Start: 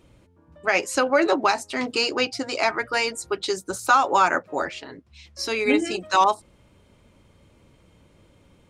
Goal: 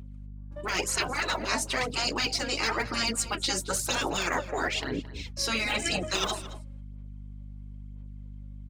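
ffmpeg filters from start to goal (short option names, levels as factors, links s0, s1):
-filter_complex "[0:a]agate=range=0.0708:threshold=0.00316:ratio=16:detection=peak,aphaser=in_gain=1:out_gain=1:delay=3.7:decay=0.61:speed=1:type=sinusoidal,afftfilt=real='re*lt(hypot(re,im),0.251)':imag='im*lt(hypot(re,im),0.251)':win_size=1024:overlap=0.75,areverse,acompressor=threshold=0.0355:ratio=16,areverse,aeval=exprs='val(0)+0.00501*(sin(2*PI*50*n/s)+sin(2*PI*2*50*n/s)/2+sin(2*PI*3*50*n/s)/3+sin(2*PI*4*50*n/s)/4+sin(2*PI*5*50*n/s)/5)':c=same,asplit=2[s0][s1];[s1]adelay=221.6,volume=0.178,highshelf=f=4000:g=-4.99[s2];[s0][s2]amix=inputs=2:normalize=0,volume=1.68"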